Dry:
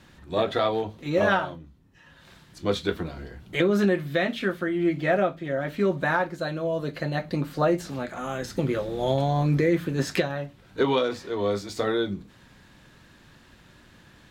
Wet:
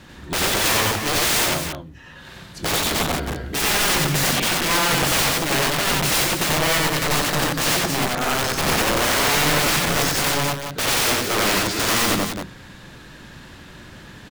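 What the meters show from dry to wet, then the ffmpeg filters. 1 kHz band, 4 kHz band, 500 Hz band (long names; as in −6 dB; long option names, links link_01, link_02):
+7.5 dB, +16.5 dB, −0.5 dB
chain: -af "aeval=exprs='(mod(20*val(0)+1,2)-1)/20':channel_layout=same,aecho=1:1:90.38|271.1:1|0.501,volume=8.5dB"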